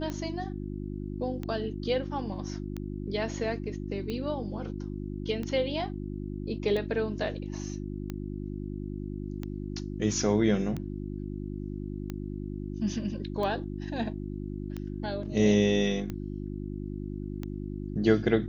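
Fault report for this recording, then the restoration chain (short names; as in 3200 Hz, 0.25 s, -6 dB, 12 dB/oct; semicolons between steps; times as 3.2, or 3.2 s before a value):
hum 50 Hz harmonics 7 -36 dBFS
tick 45 rpm -22 dBFS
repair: de-click; de-hum 50 Hz, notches 7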